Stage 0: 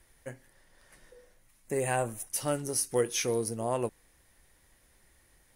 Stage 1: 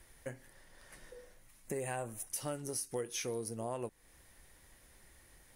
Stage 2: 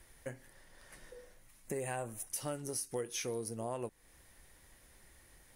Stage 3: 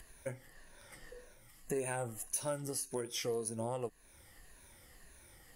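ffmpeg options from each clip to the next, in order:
ffmpeg -i in.wav -af "acompressor=threshold=-42dB:ratio=3,volume=2.5dB" out.wav
ffmpeg -i in.wav -af anull out.wav
ffmpeg -i in.wav -af "afftfilt=real='re*pow(10,10/40*sin(2*PI*(1.5*log(max(b,1)*sr/1024/100)/log(2)-(-1.8)*(pts-256)/sr)))':imag='im*pow(10,10/40*sin(2*PI*(1.5*log(max(b,1)*sr/1024/100)/log(2)-(-1.8)*(pts-256)/sr)))':win_size=1024:overlap=0.75,acompressor=mode=upward:threshold=-54dB:ratio=2.5" out.wav

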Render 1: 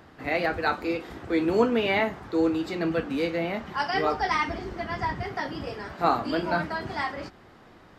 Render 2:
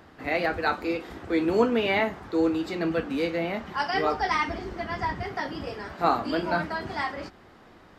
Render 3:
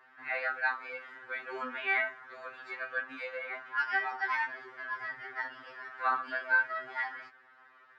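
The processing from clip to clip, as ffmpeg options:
ffmpeg -i in.wav -af "equalizer=frequency=130:width_type=o:width=0.36:gain=-4.5" out.wav
ffmpeg -i in.wav -af "bandpass=frequency=1600:width_type=q:width=3.1:csg=0,afftfilt=real='re*2.45*eq(mod(b,6),0)':imag='im*2.45*eq(mod(b,6),0)':win_size=2048:overlap=0.75,volume=4.5dB" out.wav

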